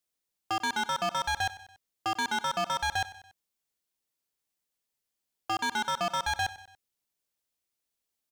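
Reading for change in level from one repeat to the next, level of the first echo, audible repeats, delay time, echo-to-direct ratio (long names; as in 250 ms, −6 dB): −5.5 dB, −17.0 dB, 3, 95 ms, −15.5 dB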